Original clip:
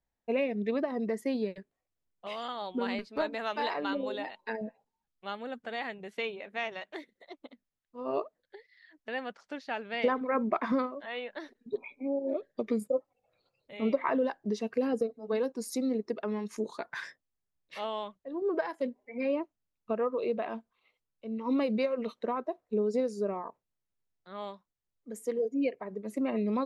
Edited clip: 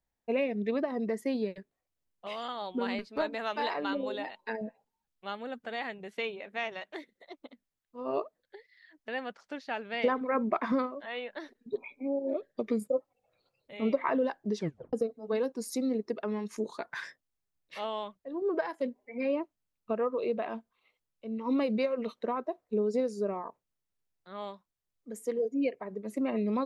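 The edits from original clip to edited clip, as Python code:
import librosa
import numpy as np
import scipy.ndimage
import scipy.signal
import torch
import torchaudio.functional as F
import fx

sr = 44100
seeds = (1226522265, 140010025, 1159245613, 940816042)

y = fx.edit(x, sr, fx.tape_stop(start_s=14.57, length_s=0.36), tone=tone)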